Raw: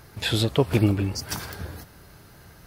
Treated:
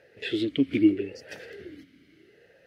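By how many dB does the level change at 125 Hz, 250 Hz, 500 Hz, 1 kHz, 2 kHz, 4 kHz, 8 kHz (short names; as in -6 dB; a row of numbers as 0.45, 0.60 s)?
-17.0 dB, +2.0 dB, -4.5 dB, under -20 dB, -4.5 dB, -8.5 dB, under -20 dB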